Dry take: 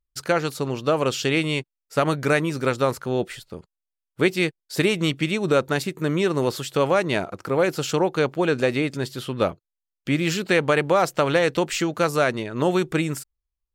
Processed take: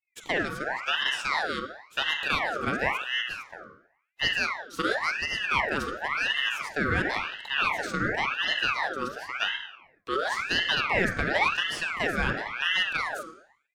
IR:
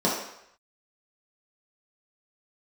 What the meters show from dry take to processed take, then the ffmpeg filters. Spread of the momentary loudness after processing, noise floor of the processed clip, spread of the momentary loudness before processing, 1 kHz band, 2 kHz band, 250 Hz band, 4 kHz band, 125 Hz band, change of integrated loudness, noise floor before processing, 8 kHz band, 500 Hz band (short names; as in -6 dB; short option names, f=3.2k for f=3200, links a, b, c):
8 LU, -69 dBFS, 7 LU, -2.5 dB, +2.0 dB, -12.5 dB, +2.0 dB, -12.5 dB, -4.5 dB, -85 dBFS, -9.5 dB, -13.0 dB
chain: -filter_complex "[0:a]highshelf=f=4.6k:g=-5.5,afreqshift=170,asplit=2[a][b];[1:a]atrim=start_sample=2205,lowpass=8.1k,adelay=43[c];[b][c]afir=irnorm=-1:irlink=0,volume=-19dB[d];[a][d]amix=inputs=2:normalize=0,aeval=exprs='val(0)*sin(2*PI*1600*n/s+1600*0.5/0.94*sin(2*PI*0.94*n/s))':c=same,volume=-5.5dB"